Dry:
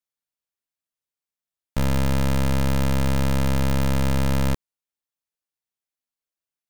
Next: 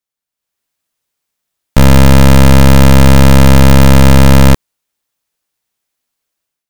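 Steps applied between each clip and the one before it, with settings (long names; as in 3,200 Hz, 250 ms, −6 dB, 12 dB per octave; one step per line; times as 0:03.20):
automatic gain control gain up to 12 dB
level +5 dB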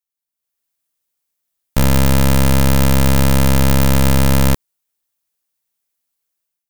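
high-shelf EQ 7,900 Hz +10 dB
level −8.5 dB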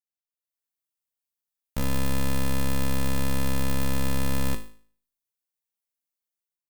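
tuned comb filter 53 Hz, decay 0.47 s, harmonics all, mix 80%
level −6 dB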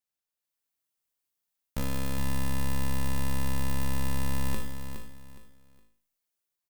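reversed playback
downward compressor 6 to 1, threshold −29 dBFS, peak gain reduction 9 dB
reversed playback
repeating echo 415 ms, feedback 28%, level −8.5 dB
level +3.5 dB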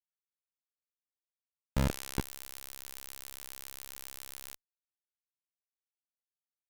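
brickwall limiter −20 dBFS, peak gain reduction 4 dB
low-pass that shuts in the quiet parts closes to 1,200 Hz, open at −24.5 dBFS
comparator with hysteresis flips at −41.5 dBFS
level +4.5 dB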